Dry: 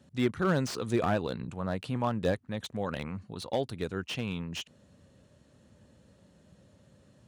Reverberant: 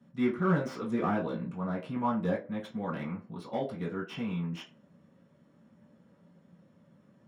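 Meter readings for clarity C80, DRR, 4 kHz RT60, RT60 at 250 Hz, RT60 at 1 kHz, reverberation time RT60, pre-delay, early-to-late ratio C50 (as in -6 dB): 17.5 dB, -7.0 dB, 0.20 s, 0.35 s, 0.40 s, 0.40 s, 3 ms, 11.0 dB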